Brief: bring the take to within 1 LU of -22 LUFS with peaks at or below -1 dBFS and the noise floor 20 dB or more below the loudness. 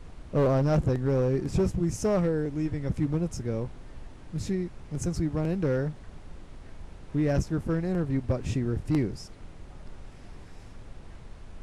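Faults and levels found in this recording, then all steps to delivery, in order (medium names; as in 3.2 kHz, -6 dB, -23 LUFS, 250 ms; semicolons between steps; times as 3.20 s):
clipped samples 1.0%; clipping level -18.5 dBFS; noise floor -46 dBFS; noise floor target -49 dBFS; loudness -28.5 LUFS; peak level -18.5 dBFS; loudness target -22.0 LUFS
-> clip repair -18.5 dBFS; noise print and reduce 6 dB; trim +6.5 dB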